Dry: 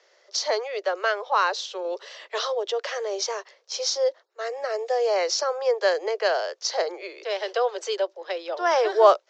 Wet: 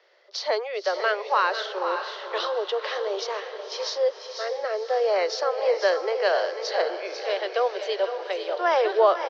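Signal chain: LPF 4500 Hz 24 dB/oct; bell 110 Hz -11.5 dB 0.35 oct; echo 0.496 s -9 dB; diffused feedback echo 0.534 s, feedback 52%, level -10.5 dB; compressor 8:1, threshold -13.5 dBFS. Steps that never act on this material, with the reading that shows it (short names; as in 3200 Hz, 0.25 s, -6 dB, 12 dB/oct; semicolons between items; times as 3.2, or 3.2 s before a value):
bell 110 Hz: input band starts at 320 Hz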